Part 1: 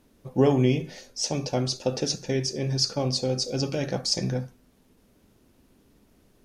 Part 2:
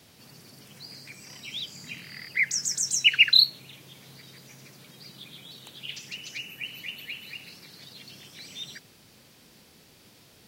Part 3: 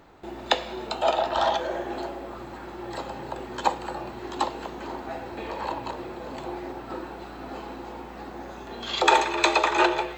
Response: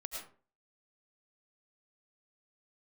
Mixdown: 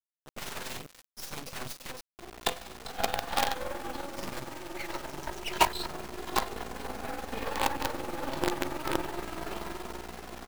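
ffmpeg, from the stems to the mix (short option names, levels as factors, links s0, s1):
-filter_complex "[0:a]equalizer=f=2500:w=1:g=3,aecho=1:1:3.9:0.39,aeval=exprs='(mod(13.3*val(0)+1,2)-1)/13.3':c=same,volume=0.668,asplit=3[s0][s1][s2];[s0]atrim=end=1.99,asetpts=PTS-STARTPTS,afade=t=out:st=1.986:d=0.004:c=hsin[s3];[s1]atrim=start=1.99:end=4.16,asetpts=PTS-STARTPTS,volume=0[s4];[s2]atrim=start=4.16,asetpts=PTS-STARTPTS,afade=t=in:d=0.004:c=hsin[s5];[s3][s4][s5]concat=n=3:v=0:a=1,asplit=2[s6][s7];[s7]volume=0.178[s8];[1:a]asplit=2[s9][s10];[s10]highpass=f=720:p=1,volume=2.24,asoftclip=type=tanh:threshold=0.531[s11];[s9][s11]amix=inputs=2:normalize=0,lowpass=f=2300:p=1,volume=0.501,adynamicsmooth=sensitivity=4:basefreq=2200,adelay=2400,volume=0.398[s12];[2:a]lowpass=f=6500:w=0.5412,lowpass=f=6500:w=1.3066,dynaudnorm=f=550:g=5:m=4.47,asplit=2[s13][s14];[s14]adelay=2.5,afreqshift=0.25[s15];[s13][s15]amix=inputs=2:normalize=1,adelay=1950,volume=1.12,asplit=2[s16][s17];[s17]volume=0.075[s18];[3:a]atrim=start_sample=2205[s19];[s8][s18]amix=inputs=2:normalize=0[s20];[s20][s19]afir=irnorm=-1:irlink=0[s21];[s6][s12][s16][s21]amix=inputs=4:normalize=0,flanger=delay=19.5:depth=2.3:speed=2.6,acrusher=bits=4:dc=4:mix=0:aa=0.000001,tremolo=f=21:d=0.519"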